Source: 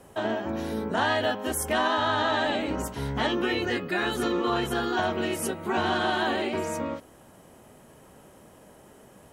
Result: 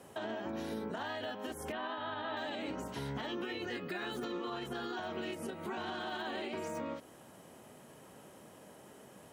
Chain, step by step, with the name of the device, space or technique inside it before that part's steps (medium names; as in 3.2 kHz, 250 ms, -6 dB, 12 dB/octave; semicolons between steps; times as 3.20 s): broadcast voice chain (high-pass 110 Hz 12 dB/octave; de-esser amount 100%; compression 4:1, threshold -33 dBFS, peak gain reduction 9.5 dB; peaking EQ 3.7 kHz +2.5 dB 1.6 oct; peak limiter -27.5 dBFS, peak gain reduction 5.5 dB); 1.72–2.37 s: low-pass 3.6 kHz 24 dB/octave; trim -3 dB